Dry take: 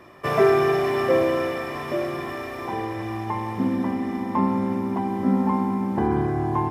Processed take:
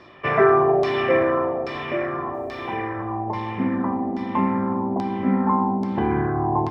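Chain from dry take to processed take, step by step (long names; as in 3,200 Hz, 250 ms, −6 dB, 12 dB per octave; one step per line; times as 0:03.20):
auto-filter low-pass saw down 1.2 Hz 590–4,800 Hz
0:02.34–0:02.75: bit-depth reduction 12 bits, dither triangular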